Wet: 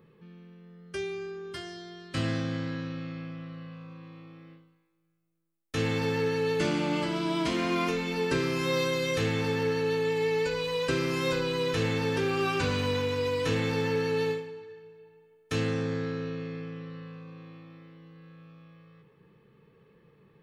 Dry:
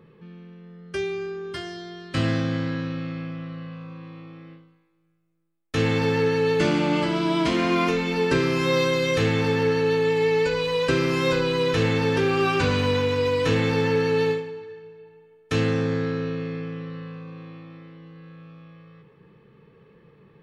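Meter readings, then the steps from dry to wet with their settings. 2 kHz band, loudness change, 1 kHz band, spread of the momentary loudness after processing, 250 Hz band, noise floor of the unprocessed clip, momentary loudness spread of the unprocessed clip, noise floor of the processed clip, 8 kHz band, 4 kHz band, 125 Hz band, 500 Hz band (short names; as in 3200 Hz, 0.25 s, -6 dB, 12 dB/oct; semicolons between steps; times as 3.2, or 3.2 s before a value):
-6.0 dB, -6.0 dB, -6.5 dB, 16 LU, -6.5 dB, -57 dBFS, 16 LU, -64 dBFS, -2.5 dB, -5.0 dB, -6.5 dB, -6.5 dB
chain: high shelf 7300 Hz +9 dB; gain -6.5 dB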